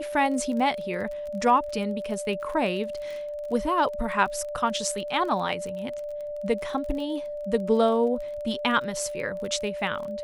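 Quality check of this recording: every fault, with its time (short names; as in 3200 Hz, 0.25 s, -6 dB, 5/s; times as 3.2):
crackle 25/s -34 dBFS
tone 590 Hz -31 dBFS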